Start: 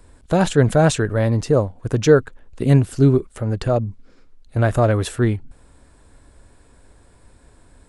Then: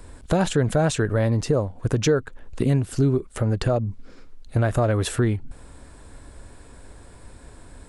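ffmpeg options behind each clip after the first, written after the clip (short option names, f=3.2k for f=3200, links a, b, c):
-filter_complex "[0:a]asplit=2[a][b];[b]alimiter=limit=-11.5dB:level=0:latency=1:release=219,volume=-0.5dB[c];[a][c]amix=inputs=2:normalize=0,acompressor=threshold=-21dB:ratio=2.5"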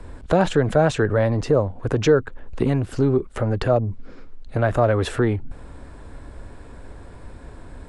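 -filter_complex "[0:a]aemphasis=mode=reproduction:type=75fm,acrossover=split=290[a][b];[a]asoftclip=type=tanh:threshold=-25.5dB[c];[c][b]amix=inputs=2:normalize=0,volume=4.5dB"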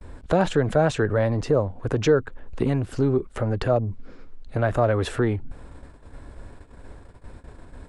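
-af "agate=range=-37dB:threshold=-38dB:ratio=16:detection=peak,volume=-2.5dB"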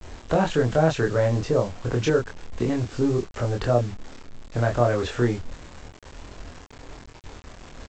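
-filter_complex "[0:a]aresample=16000,acrusher=bits=6:mix=0:aa=0.000001,aresample=44100,asplit=2[a][b];[b]adelay=25,volume=-2dB[c];[a][c]amix=inputs=2:normalize=0,volume=-2.5dB"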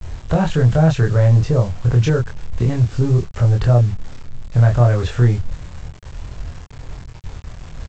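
-filter_complex "[0:a]lowshelf=f=190:t=q:w=1.5:g=9.5,asplit=2[a][b];[b]asoftclip=type=tanh:threshold=-12.5dB,volume=-11.5dB[c];[a][c]amix=inputs=2:normalize=0"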